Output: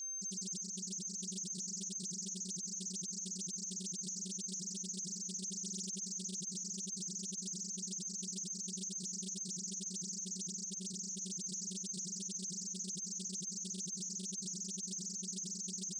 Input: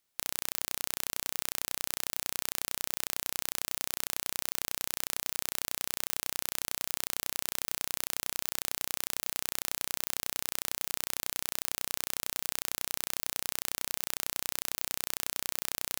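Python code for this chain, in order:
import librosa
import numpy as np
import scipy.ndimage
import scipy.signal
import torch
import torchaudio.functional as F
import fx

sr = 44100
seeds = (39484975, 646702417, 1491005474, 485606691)

y = fx.bin_expand(x, sr, power=1.5)
y = scipy.signal.sosfilt(scipy.signal.butter(2, 140.0, 'highpass', fs=sr, output='sos'), y)
y = fx.peak_eq(y, sr, hz=190.0, db=13.5, octaves=0.2)
y = fx.comb(y, sr, ms=6.8, depth=0.5, at=(5.48, 5.95), fade=0.02)
y = fx.high_shelf(y, sr, hz=10000.0, db=-12.0, at=(10.48, 11.23))
y = y + 10.0 ** (-51.0 / 20.0) * np.sin(2.0 * np.pi * 6300.0 * np.arange(len(y)) / sr)
y = fx.spec_topn(y, sr, count=1)
y = fx.echo_thinned(y, sr, ms=301, feedback_pct=51, hz=410.0, wet_db=-7.0)
y = fx.doppler_dist(y, sr, depth_ms=0.45)
y = F.gain(torch.from_numpy(y), 17.0).numpy()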